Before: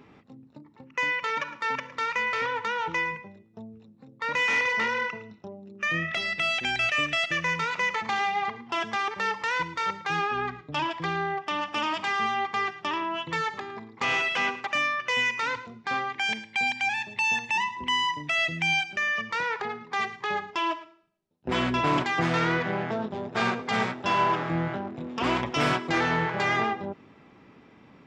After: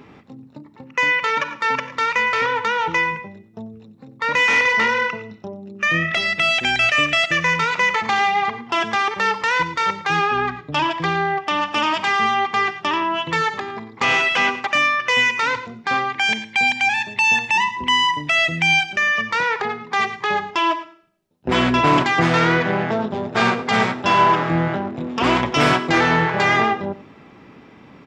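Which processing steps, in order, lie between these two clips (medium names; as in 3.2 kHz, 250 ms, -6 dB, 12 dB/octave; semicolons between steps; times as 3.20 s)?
delay 92 ms -17 dB; trim +8.5 dB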